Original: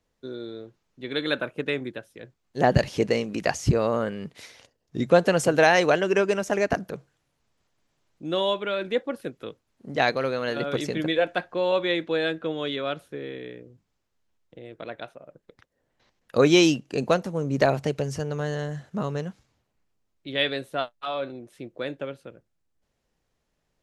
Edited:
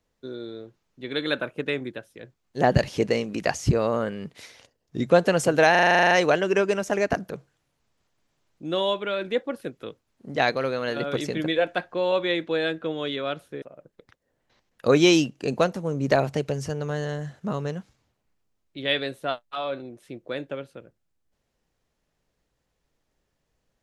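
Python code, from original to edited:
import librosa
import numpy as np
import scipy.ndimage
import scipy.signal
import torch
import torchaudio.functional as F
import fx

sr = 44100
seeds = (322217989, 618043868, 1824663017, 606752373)

y = fx.edit(x, sr, fx.stutter(start_s=5.71, slice_s=0.04, count=11),
    fx.cut(start_s=13.22, length_s=1.9), tone=tone)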